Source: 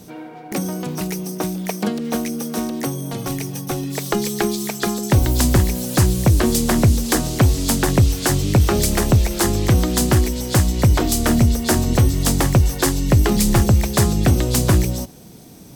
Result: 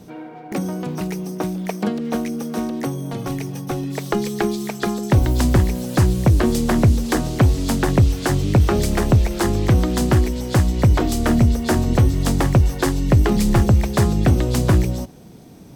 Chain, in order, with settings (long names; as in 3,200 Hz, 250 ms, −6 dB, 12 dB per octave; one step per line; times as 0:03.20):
high-shelf EQ 4,200 Hz −11 dB